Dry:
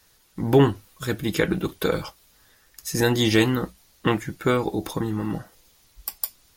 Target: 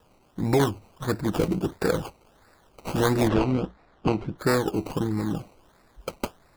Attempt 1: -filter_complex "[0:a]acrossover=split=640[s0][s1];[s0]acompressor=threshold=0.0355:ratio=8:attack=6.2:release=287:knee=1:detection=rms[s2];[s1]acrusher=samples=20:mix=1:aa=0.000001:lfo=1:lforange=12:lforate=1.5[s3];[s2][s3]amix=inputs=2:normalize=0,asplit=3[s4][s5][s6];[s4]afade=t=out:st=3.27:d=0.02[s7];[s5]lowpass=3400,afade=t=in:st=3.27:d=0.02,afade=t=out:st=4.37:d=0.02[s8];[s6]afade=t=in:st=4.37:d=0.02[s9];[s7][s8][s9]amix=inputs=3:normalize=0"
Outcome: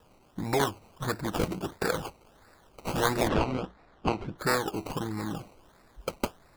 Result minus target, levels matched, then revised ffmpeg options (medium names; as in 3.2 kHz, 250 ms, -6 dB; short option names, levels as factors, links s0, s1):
compression: peak gain reduction +10 dB
-filter_complex "[0:a]acrossover=split=640[s0][s1];[s0]acompressor=threshold=0.133:ratio=8:attack=6.2:release=287:knee=1:detection=rms[s2];[s1]acrusher=samples=20:mix=1:aa=0.000001:lfo=1:lforange=12:lforate=1.5[s3];[s2][s3]amix=inputs=2:normalize=0,asplit=3[s4][s5][s6];[s4]afade=t=out:st=3.27:d=0.02[s7];[s5]lowpass=3400,afade=t=in:st=3.27:d=0.02,afade=t=out:st=4.37:d=0.02[s8];[s6]afade=t=in:st=4.37:d=0.02[s9];[s7][s8][s9]amix=inputs=3:normalize=0"